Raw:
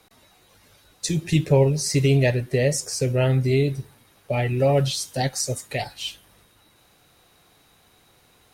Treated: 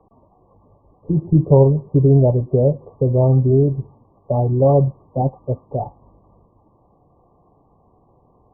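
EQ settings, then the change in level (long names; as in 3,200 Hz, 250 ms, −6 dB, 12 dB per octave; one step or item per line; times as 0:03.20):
linear-phase brick-wall low-pass 1,200 Hz
high-frequency loss of the air 470 metres
+6.5 dB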